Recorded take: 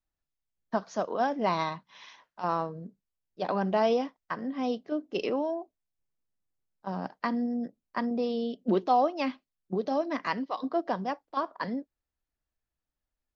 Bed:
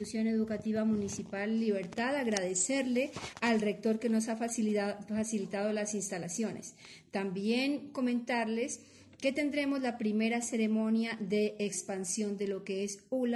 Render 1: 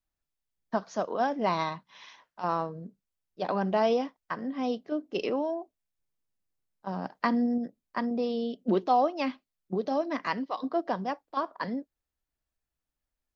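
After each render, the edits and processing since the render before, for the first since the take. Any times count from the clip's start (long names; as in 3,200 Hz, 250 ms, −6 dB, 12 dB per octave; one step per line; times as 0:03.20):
0:07.15–0:07.58: clip gain +3.5 dB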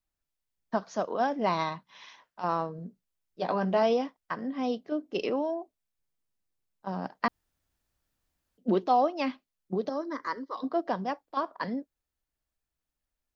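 0:02.77–0:03.83: double-tracking delay 17 ms −8.5 dB
0:07.28–0:08.58: fill with room tone
0:09.89–0:10.56: phaser with its sweep stopped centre 720 Hz, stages 6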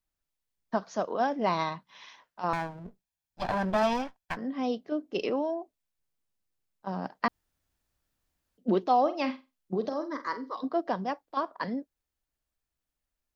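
0:02.53–0:04.37: lower of the sound and its delayed copy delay 1.2 ms
0:09.01–0:10.51: flutter between parallel walls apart 7.9 metres, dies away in 0.25 s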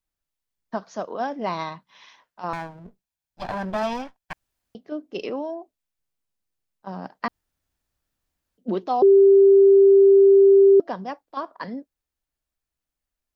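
0:04.33–0:04.75: fill with room tone
0:09.02–0:10.80: beep over 393 Hz −9.5 dBFS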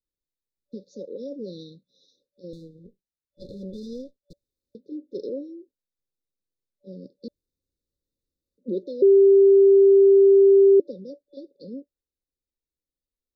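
brick-wall band-stop 580–3,500 Hz
bass and treble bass −7 dB, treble −12 dB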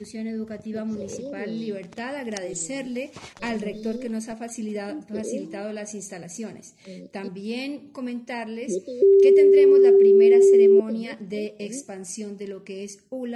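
mix in bed +0.5 dB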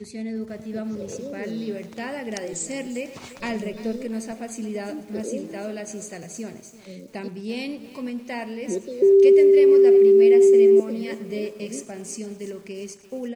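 repeating echo 107 ms, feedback 48%, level −18 dB
feedback echo at a low word length 345 ms, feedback 55%, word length 7 bits, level −15 dB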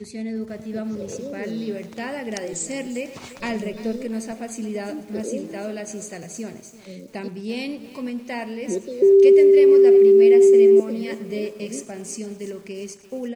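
level +1.5 dB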